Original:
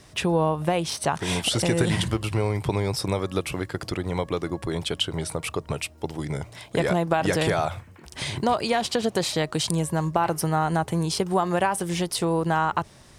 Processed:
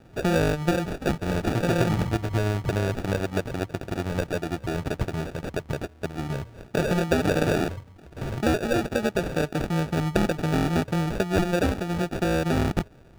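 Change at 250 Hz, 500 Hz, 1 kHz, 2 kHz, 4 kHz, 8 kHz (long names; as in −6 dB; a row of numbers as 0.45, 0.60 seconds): +1.5, −0.5, −5.5, 0.0, −7.5, −8.5 decibels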